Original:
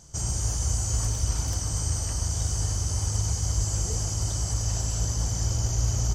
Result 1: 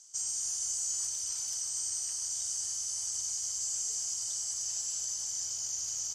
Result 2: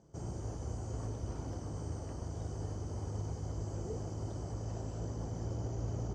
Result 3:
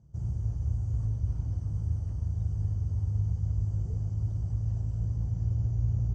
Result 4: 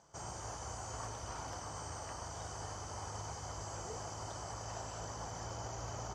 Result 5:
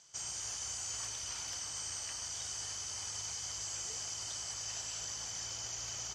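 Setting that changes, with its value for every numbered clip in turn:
band-pass filter, frequency: 7.1 kHz, 350 Hz, 110 Hz, 940 Hz, 2.8 kHz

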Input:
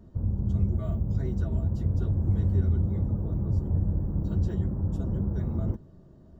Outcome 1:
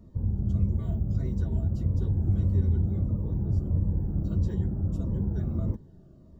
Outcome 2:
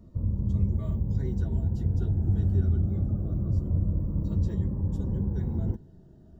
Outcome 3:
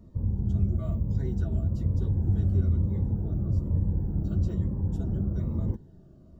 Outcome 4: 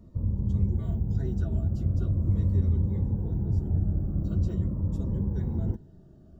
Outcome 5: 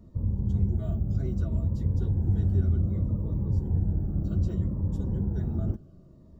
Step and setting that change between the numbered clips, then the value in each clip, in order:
Shepard-style phaser, rate: 1.6 Hz, 0.25 Hz, 1.1 Hz, 0.43 Hz, 0.65 Hz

